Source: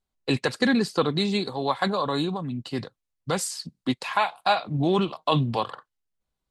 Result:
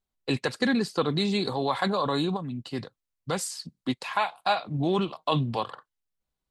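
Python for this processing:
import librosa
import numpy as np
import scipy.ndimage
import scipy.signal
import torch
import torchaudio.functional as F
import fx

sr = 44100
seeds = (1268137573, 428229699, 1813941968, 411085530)

y = fx.env_flatten(x, sr, amount_pct=50, at=(1.07, 2.37))
y = F.gain(torch.from_numpy(y), -3.0).numpy()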